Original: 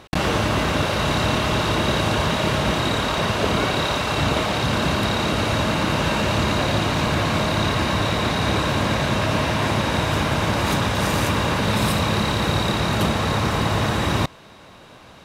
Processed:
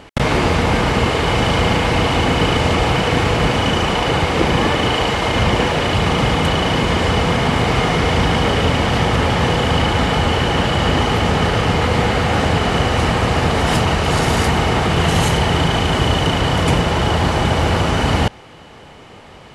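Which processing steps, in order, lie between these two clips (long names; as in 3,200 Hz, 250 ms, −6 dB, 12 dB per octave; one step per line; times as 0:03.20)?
speed change −22%
level +5 dB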